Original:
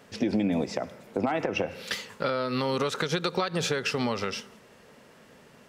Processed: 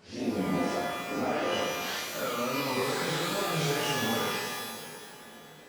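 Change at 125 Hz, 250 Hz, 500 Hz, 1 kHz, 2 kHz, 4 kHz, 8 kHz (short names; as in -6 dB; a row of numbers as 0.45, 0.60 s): -2.0, -3.0, -2.0, +1.0, +1.0, +1.0, +4.0 dB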